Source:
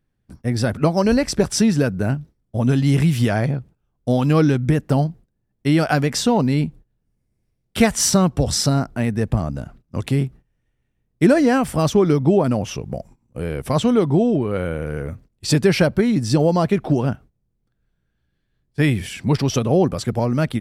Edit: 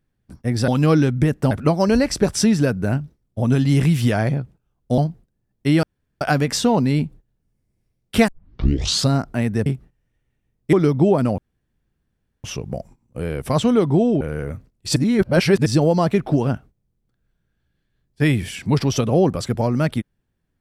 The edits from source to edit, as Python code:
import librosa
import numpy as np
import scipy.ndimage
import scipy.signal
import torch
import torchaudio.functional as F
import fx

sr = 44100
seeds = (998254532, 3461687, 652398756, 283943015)

y = fx.edit(x, sr, fx.move(start_s=4.15, length_s=0.83, to_s=0.68),
    fx.insert_room_tone(at_s=5.83, length_s=0.38),
    fx.tape_start(start_s=7.9, length_s=0.82),
    fx.cut(start_s=9.28, length_s=0.9),
    fx.cut(start_s=11.25, length_s=0.74),
    fx.insert_room_tone(at_s=12.64, length_s=1.06),
    fx.cut(start_s=14.41, length_s=0.38),
    fx.reverse_span(start_s=15.54, length_s=0.7), tone=tone)